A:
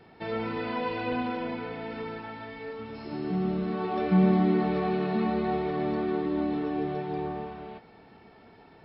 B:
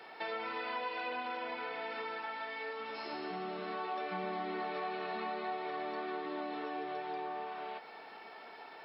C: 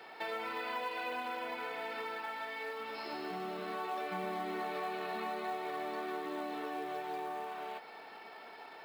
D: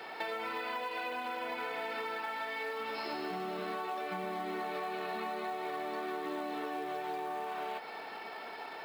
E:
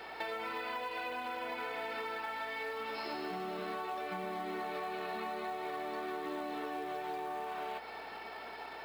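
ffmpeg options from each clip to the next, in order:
ffmpeg -i in.wav -af "highpass=670,acompressor=threshold=-47dB:ratio=3,volume=7.5dB" out.wav
ffmpeg -i in.wav -af "acrusher=bits=6:mode=log:mix=0:aa=0.000001" out.wav
ffmpeg -i in.wav -af "acompressor=threshold=-41dB:ratio=6,volume=6.5dB" out.wav
ffmpeg -i in.wav -af "aeval=exprs='val(0)+0.000355*(sin(2*PI*60*n/s)+sin(2*PI*2*60*n/s)/2+sin(2*PI*3*60*n/s)/3+sin(2*PI*4*60*n/s)/4+sin(2*PI*5*60*n/s)/5)':channel_layout=same,volume=-1.5dB" out.wav

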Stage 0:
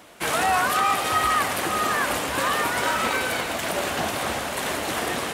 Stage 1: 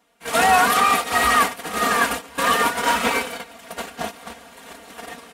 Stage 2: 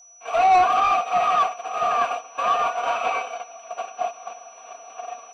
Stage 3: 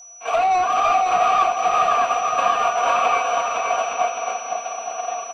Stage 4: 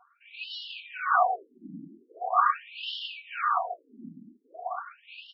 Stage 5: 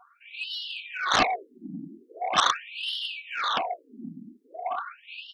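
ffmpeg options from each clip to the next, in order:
ffmpeg -i in.wav -af "agate=range=-21dB:threshold=-23dB:ratio=16:detection=peak,aecho=1:1:4.3:0.91,volume=3dB" out.wav
ffmpeg -i in.wav -filter_complex "[0:a]asplit=3[link_01][link_02][link_03];[link_01]bandpass=frequency=730:width_type=q:width=8,volume=0dB[link_04];[link_02]bandpass=frequency=1090:width_type=q:width=8,volume=-6dB[link_05];[link_03]bandpass=frequency=2440:width_type=q:width=8,volume=-9dB[link_06];[link_04][link_05][link_06]amix=inputs=3:normalize=0,asplit=2[link_07][link_08];[link_08]highpass=frequency=720:poles=1,volume=16dB,asoftclip=type=tanh:threshold=-9.5dB[link_09];[link_07][link_09]amix=inputs=2:normalize=0,lowpass=frequency=3000:poles=1,volume=-6dB,aeval=exprs='val(0)+0.00447*sin(2*PI*5900*n/s)':channel_layout=same" out.wav
ffmpeg -i in.wav -filter_complex "[0:a]acompressor=threshold=-24dB:ratio=6,asplit=2[link_01][link_02];[link_02]aecho=0:1:510|867|1117|1292|1414:0.631|0.398|0.251|0.158|0.1[link_03];[link_01][link_03]amix=inputs=2:normalize=0,volume=7dB" out.wav
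ffmpeg -i in.wav -filter_complex "[0:a]tremolo=f=1.7:d=0.92,acrossover=split=740[link_01][link_02];[link_01]aeval=exprs='abs(val(0))':channel_layout=same[link_03];[link_03][link_02]amix=inputs=2:normalize=0,afftfilt=real='re*between(b*sr/1024,230*pow(4000/230,0.5+0.5*sin(2*PI*0.42*pts/sr))/1.41,230*pow(4000/230,0.5+0.5*sin(2*PI*0.42*pts/sr))*1.41)':imag='im*between(b*sr/1024,230*pow(4000/230,0.5+0.5*sin(2*PI*0.42*pts/sr))/1.41,230*pow(4000/230,0.5+0.5*sin(2*PI*0.42*pts/sr))*1.41)':win_size=1024:overlap=0.75,volume=3dB" out.wav
ffmpeg -i in.wav -af "aeval=exprs='0.316*(cos(1*acos(clip(val(0)/0.316,-1,1)))-cos(1*PI/2))+0.141*(cos(7*acos(clip(val(0)/0.316,-1,1)))-cos(7*PI/2))':channel_layout=same,volume=-1.5dB" out.wav

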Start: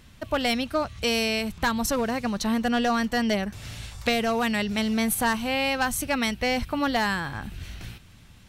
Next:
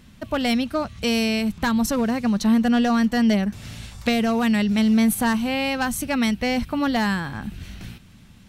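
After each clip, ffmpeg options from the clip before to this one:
ffmpeg -i in.wav -af "equalizer=frequency=210:width=1.6:gain=8.5" out.wav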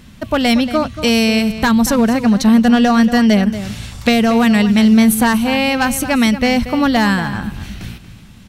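ffmpeg -i in.wav -filter_complex "[0:a]asplit=2[link_01][link_02];[link_02]adelay=233.2,volume=-12dB,highshelf=frequency=4000:gain=-5.25[link_03];[link_01][link_03]amix=inputs=2:normalize=0,volume=8dB" out.wav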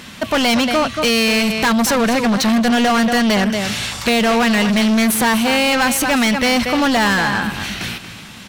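ffmpeg -i in.wav -filter_complex "[0:a]asplit=2[link_01][link_02];[link_02]highpass=frequency=720:poles=1,volume=27dB,asoftclip=type=tanh:threshold=-1dB[link_03];[link_01][link_03]amix=inputs=2:normalize=0,lowpass=frequency=7500:poles=1,volume=-6dB,volume=-7.5dB" out.wav

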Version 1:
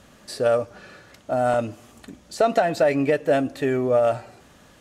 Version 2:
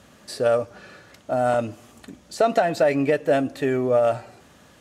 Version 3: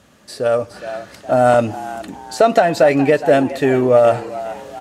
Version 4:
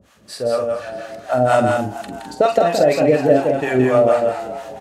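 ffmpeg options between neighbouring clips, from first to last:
ffmpeg -i in.wav -af "highpass=56" out.wav
ffmpeg -i in.wav -filter_complex "[0:a]asplit=5[link_01][link_02][link_03][link_04][link_05];[link_02]adelay=416,afreqshift=83,volume=-15.5dB[link_06];[link_03]adelay=832,afreqshift=166,volume=-22.2dB[link_07];[link_04]adelay=1248,afreqshift=249,volume=-29dB[link_08];[link_05]adelay=1664,afreqshift=332,volume=-35.7dB[link_09];[link_01][link_06][link_07][link_08][link_09]amix=inputs=5:normalize=0,dynaudnorm=framelen=240:gausssize=5:maxgain=12.5dB" out.wav
ffmpeg -i in.wav -filter_complex "[0:a]acrossover=split=630[link_01][link_02];[link_01]aeval=exprs='val(0)*(1-1/2+1/2*cos(2*PI*4.2*n/s))':channel_layout=same[link_03];[link_02]aeval=exprs='val(0)*(1-1/2-1/2*cos(2*PI*4.2*n/s))':channel_layout=same[link_04];[link_03][link_04]amix=inputs=2:normalize=0,asplit=2[link_05][link_06];[link_06]aecho=0:1:46.65|169.1|207:0.398|0.562|0.447[link_07];[link_05][link_07]amix=inputs=2:normalize=0,volume=2dB" out.wav

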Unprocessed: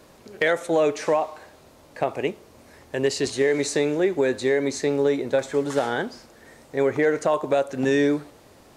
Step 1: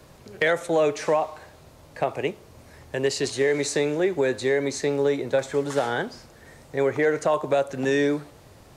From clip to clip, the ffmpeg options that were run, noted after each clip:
ffmpeg -i in.wav -filter_complex "[0:a]lowshelf=frequency=180:width_type=q:width=1.5:gain=6,acrossover=split=210|980[link_01][link_02][link_03];[link_01]acompressor=threshold=-40dB:ratio=6[link_04];[link_04][link_02][link_03]amix=inputs=3:normalize=0" out.wav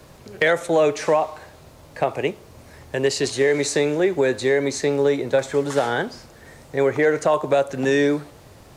ffmpeg -i in.wav -af "acrusher=bits=11:mix=0:aa=0.000001,volume=3.5dB" out.wav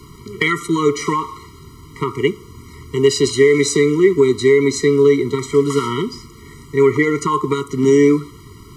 ffmpeg -i in.wav -af "afftfilt=real='re*eq(mod(floor(b*sr/1024/470),2),0)':imag='im*eq(mod(floor(b*sr/1024/470),2),0)':win_size=1024:overlap=0.75,volume=8dB" out.wav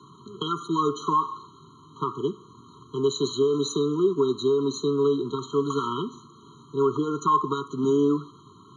ffmpeg -i in.wav -af "highpass=frequency=130:width=0.5412,highpass=frequency=130:width=1.3066,equalizer=frequency=530:width_type=q:width=4:gain=-9,equalizer=frequency=1100:width_type=q:width=4:gain=8,equalizer=frequency=3500:width_type=q:width=4:gain=4,lowpass=frequency=7400:width=0.5412,lowpass=frequency=7400:width=1.3066,afftfilt=real='re*eq(mod(floor(b*sr/1024/1500),2),0)':imag='im*eq(mod(floor(b*sr/1024/1500),2),0)':win_size=1024:overlap=0.75,volume=-8.5dB" out.wav

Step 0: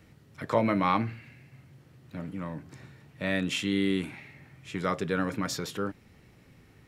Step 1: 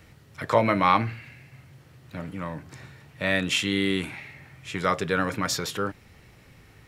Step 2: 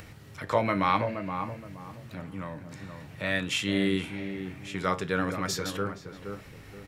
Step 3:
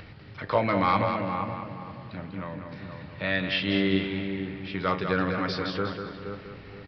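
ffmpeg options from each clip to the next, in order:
ffmpeg -i in.wav -af "equalizer=frequency=240:width_type=o:width=1.8:gain=-7,volume=7dB" out.wav
ffmpeg -i in.wav -filter_complex "[0:a]acompressor=mode=upward:threshold=-34dB:ratio=2.5,asplit=2[link_01][link_02];[link_02]adelay=472,lowpass=frequency=910:poles=1,volume=-5.5dB,asplit=2[link_03][link_04];[link_04]adelay=472,lowpass=frequency=910:poles=1,volume=0.34,asplit=2[link_05][link_06];[link_06]adelay=472,lowpass=frequency=910:poles=1,volume=0.34,asplit=2[link_07][link_08];[link_08]adelay=472,lowpass=frequency=910:poles=1,volume=0.34[link_09];[link_03][link_05][link_07][link_09]amix=inputs=4:normalize=0[link_10];[link_01][link_10]amix=inputs=2:normalize=0,flanger=delay=9.8:depth=1.1:regen=78:speed=0.31:shape=sinusoidal" out.wav
ffmpeg -i in.wav -af "aeval=exprs='clip(val(0),-1,0.15)':channel_layout=same,aecho=1:1:195|390|585|780:0.447|0.156|0.0547|0.0192,aresample=11025,aresample=44100,volume=1.5dB" out.wav

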